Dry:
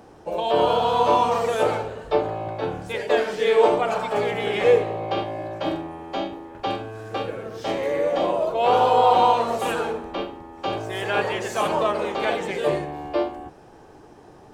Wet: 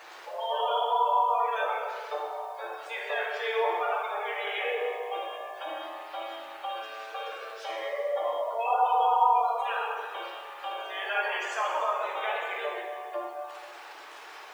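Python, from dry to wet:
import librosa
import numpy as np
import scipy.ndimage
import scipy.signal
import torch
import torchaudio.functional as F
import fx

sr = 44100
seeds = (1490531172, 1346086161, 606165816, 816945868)

y = fx.delta_mod(x, sr, bps=64000, step_db=-33.0)
y = scipy.signal.sosfilt(scipy.signal.butter(2, 940.0, 'highpass', fs=sr, output='sos'), y)
y = fx.spec_gate(y, sr, threshold_db=-15, keep='strong')
y = fx.high_shelf(y, sr, hz=6900.0, db=-7.5)
y = fx.quant_dither(y, sr, seeds[0], bits=10, dither='none')
y = fx.rev_plate(y, sr, seeds[1], rt60_s=1.7, hf_ratio=0.9, predelay_ms=0, drr_db=-1.5)
y = y * librosa.db_to_amplitude(-4.0)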